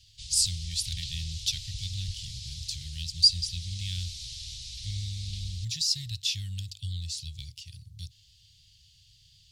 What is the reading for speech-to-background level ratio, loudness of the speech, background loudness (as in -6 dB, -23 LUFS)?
9.5 dB, -30.0 LUFS, -39.5 LUFS